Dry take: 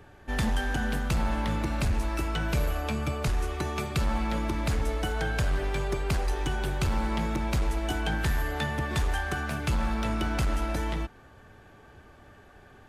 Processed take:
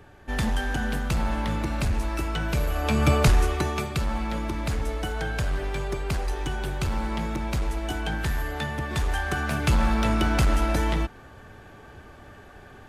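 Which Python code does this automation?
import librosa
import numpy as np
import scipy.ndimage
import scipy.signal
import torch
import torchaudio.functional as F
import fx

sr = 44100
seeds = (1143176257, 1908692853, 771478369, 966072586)

y = fx.gain(x, sr, db=fx.line((2.68, 1.5), (3.13, 11.5), (4.03, 0.0), (8.86, 0.0), (9.67, 6.0)))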